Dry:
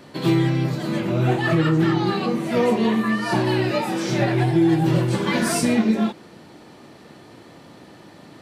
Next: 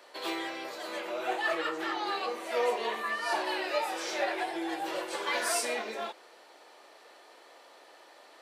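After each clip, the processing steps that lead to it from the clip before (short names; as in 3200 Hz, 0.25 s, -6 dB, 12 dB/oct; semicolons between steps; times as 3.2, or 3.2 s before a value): HPF 490 Hz 24 dB/oct; gain -5.5 dB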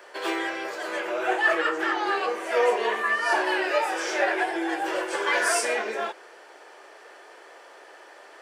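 thirty-one-band EQ 160 Hz -6 dB, 250 Hz -8 dB, 400 Hz +5 dB, 1600 Hz +7 dB, 4000 Hz -9 dB, 12500 Hz -10 dB; gain +6 dB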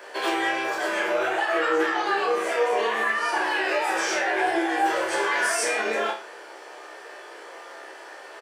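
limiter -21.5 dBFS, peak gain reduction 11.5 dB; doubler 15 ms -5 dB; flutter echo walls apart 5.4 m, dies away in 0.35 s; gain +3.5 dB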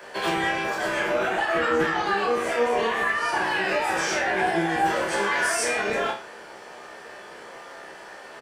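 octaver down 1 oct, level -4 dB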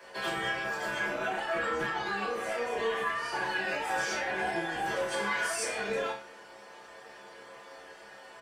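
metallic resonator 66 Hz, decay 0.26 s, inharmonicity 0.008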